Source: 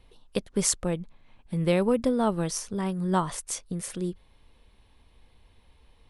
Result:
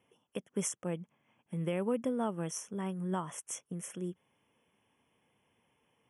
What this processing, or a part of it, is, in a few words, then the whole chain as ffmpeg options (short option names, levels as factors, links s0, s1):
PA system with an anti-feedback notch: -af "highpass=f=130:w=0.5412,highpass=f=130:w=1.3066,asuperstop=centerf=4300:order=20:qfactor=2.2,alimiter=limit=0.168:level=0:latency=1:release=196,volume=0.422"